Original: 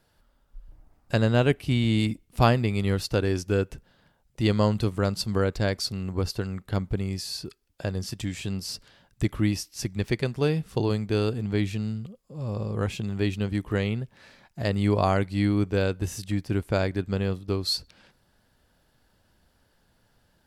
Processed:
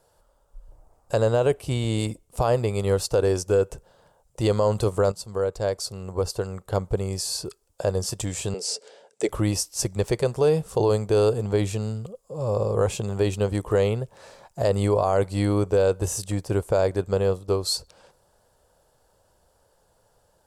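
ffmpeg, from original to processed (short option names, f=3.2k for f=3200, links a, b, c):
-filter_complex "[0:a]asettb=1/sr,asplit=3[a][b][c];[a]atrim=end=8.544[d];[b]atrim=start=8.54:end=9.29,asetpts=PTS-STARTPTS,afade=t=in:d=0.004:c=qsin,afade=t=out:st=0.746:d=0.004:c=qsin,highpass=f=250:w=0.5412,highpass=f=250:w=1.3066,equalizer=f=300:t=q:w=4:g=-4,equalizer=f=440:t=q:w=4:g=10,equalizer=f=1.1k:t=q:w=4:g=-10,equalizer=f=2.2k:t=q:w=4:g=5,lowpass=f=9.1k:w=0.5412,lowpass=f=9.1k:w=1.3066[e];[c]atrim=start=9.286[f];[d][e]acrossfade=d=0.004:c1=hsin:c2=qsin[g];[g][f]acrossfade=d=0.004:c1=qsin:c2=hsin,asplit=2[h][i];[h]atrim=end=5.12,asetpts=PTS-STARTPTS,afade=t=out:st=5.116:d=0.004:c=hsin:silence=0.237137[j];[i]atrim=start=5.12,asetpts=PTS-STARTPTS,afade=t=in:d=2.29:silence=0.237137[k];[j][k]concat=n=2:v=0:a=1,dynaudnorm=f=230:g=31:m=3.5dB,equalizer=f=250:t=o:w=1:g=-9,equalizer=f=500:t=o:w=1:g=11,equalizer=f=1k:t=o:w=1:g=6,equalizer=f=2k:t=o:w=1:g=-7,equalizer=f=4k:t=o:w=1:g=-3,equalizer=f=8k:t=o:w=1:g=10,alimiter=limit=-12dB:level=0:latency=1:release=31"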